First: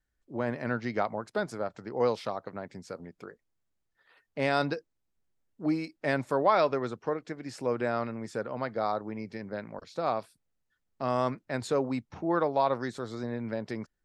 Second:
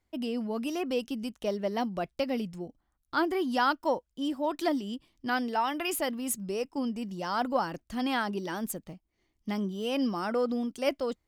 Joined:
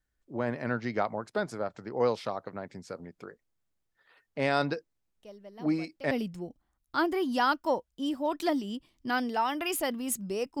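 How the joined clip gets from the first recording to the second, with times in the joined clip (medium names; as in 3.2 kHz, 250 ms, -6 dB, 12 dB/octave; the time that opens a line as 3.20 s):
first
5.19 s: add second from 1.38 s 0.92 s -17.5 dB
6.11 s: go over to second from 2.30 s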